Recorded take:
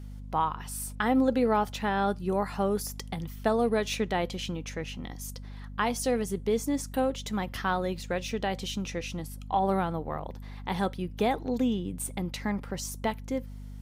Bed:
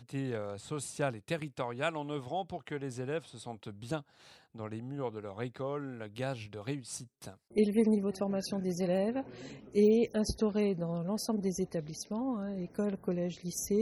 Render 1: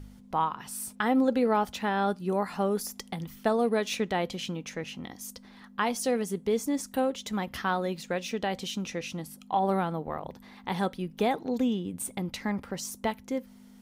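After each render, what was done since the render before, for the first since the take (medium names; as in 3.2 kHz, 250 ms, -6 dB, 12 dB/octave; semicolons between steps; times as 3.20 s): de-hum 50 Hz, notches 3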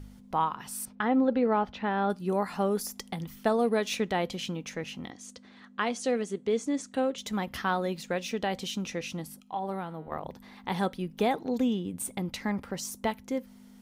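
0.85–2.10 s: distance through air 250 m; 5.10–7.18 s: cabinet simulation 100–7900 Hz, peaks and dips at 170 Hz -8 dB, 900 Hz -6 dB, 5.2 kHz -6 dB; 9.40–10.12 s: feedback comb 160 Hz, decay 1.2 s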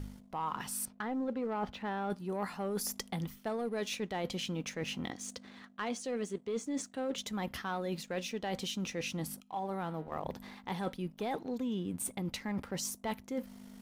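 waveshaping leveller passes 1; reverse; compression, threshold -34 dBFS, peak gain reduction 14 dB; reverse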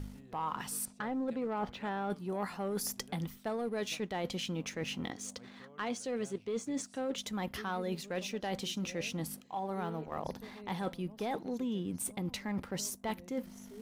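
add bed -21 dB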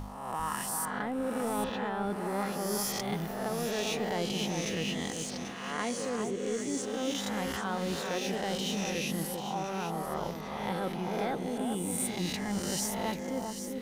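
reverse spectral sustain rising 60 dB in 1.14 s; on a send: echo whose repeats swap between lows and highs 395 ms, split 1.5 kHz, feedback 57%, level -4.5 dB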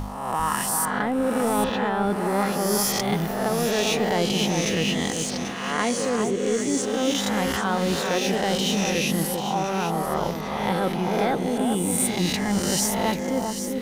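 trim +9.5 dB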